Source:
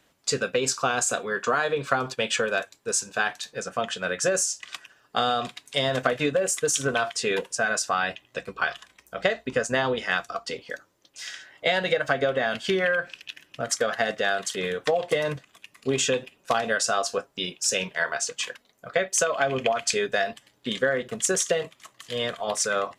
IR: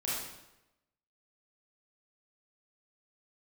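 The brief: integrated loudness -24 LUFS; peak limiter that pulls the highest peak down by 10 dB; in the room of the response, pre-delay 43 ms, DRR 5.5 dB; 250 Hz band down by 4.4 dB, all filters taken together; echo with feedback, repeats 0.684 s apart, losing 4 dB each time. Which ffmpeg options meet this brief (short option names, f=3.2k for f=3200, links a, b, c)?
-filter_complex "[0:a]equalizer=f=250:t=o:g=-6,alimiter=limit=-16dB:level=0:latency=1,aecho=1:1:684|1368|2052|2736|3420|4104|4788|5472|6156:0.631|0.398|0.25|0.158|0.0994|0.0626|0.0394|0.0249|0.0157,asplit=2[a][b];[1:a]atrim=start_sample=2205,adelay=43[c];[b][c]afir=irnorm=-1:irlink=0,volume=-10.5dB[d];[a][d]amix=inputs=2:normalize=0,volume=1.5dB"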